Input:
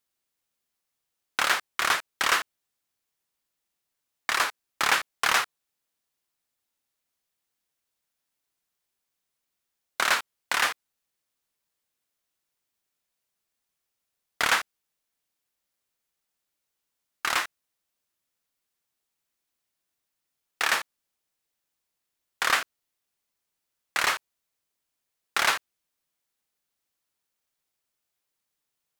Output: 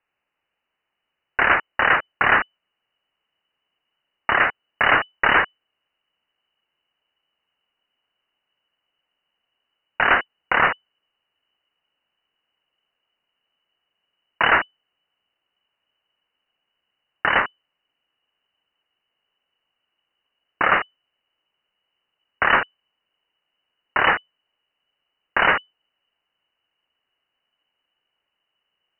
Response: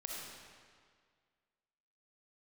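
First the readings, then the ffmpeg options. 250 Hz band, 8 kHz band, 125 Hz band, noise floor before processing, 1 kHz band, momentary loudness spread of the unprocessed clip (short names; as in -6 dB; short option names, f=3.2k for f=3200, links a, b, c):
+12.5 dB, under -40 dB, +15.0 dB, -83 dBFS, +8.0 dB, 11 LU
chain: -af "asubboost=boost=5.5:cutoff=180,aeval=exprs='0.398*sin(PI/2*2.24*val(0)/0.398)':c=same,lowpass=f=2.6k:t=q:w=0.5098,lowpass=f=2.6k:t=q:w=0.6013,lowpass=f=2.6k:t=q:w=0.9,lowpass=f=2.6k:t=q:w=2.563,afreqshift=-3000"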